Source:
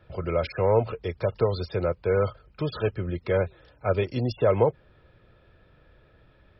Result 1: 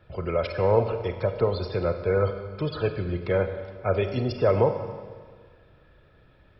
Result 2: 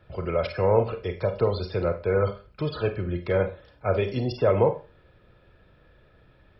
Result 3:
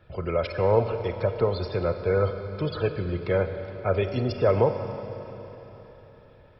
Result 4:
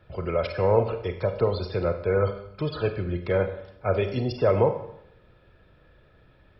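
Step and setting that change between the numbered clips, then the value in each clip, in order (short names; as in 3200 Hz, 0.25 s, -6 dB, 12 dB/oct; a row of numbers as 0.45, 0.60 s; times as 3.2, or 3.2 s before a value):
Schroeder reverb, RT60: 1.7, 0.32, 3.9, 0.75 s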